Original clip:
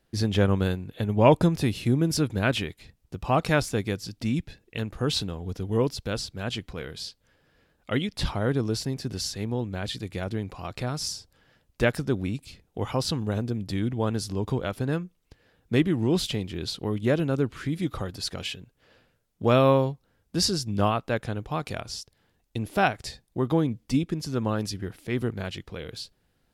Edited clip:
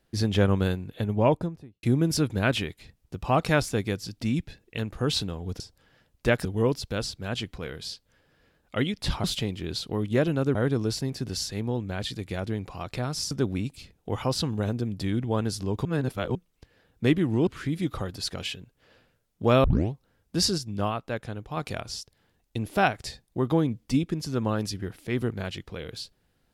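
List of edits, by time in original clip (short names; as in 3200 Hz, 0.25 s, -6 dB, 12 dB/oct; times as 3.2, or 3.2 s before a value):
0.89–1.83 studio fade out
11.15–12 move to 5.6
14.54–15.04 reverse
16.16–17.47 move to 8.39
19.64 tape start 0.28 s
20.58–21.57 gain -4.5 dB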